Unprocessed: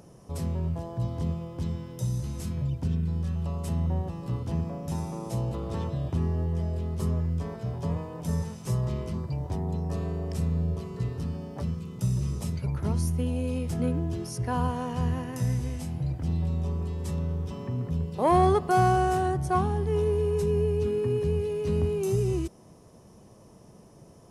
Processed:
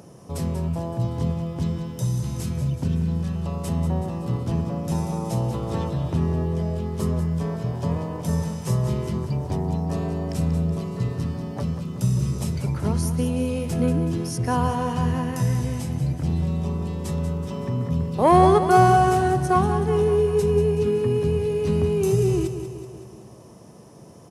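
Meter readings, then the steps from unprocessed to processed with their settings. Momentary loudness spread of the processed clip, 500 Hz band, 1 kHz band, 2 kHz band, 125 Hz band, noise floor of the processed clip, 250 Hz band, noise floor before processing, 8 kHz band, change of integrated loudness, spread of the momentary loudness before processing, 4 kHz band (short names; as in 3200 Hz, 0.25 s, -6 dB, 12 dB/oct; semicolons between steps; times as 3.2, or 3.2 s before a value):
8 LU, +6.0 dB, +7.0 dB, +6.5 dB, +4.5 dB, -45 dBFS, +6.5 dB, -52 dBFS, +6.5 dB, +5.5 dB, 7 LU, +6.5 dB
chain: HPF 89 Hz; feedback echo 0.188 s, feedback 56%, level -10 dB; gain +6 dB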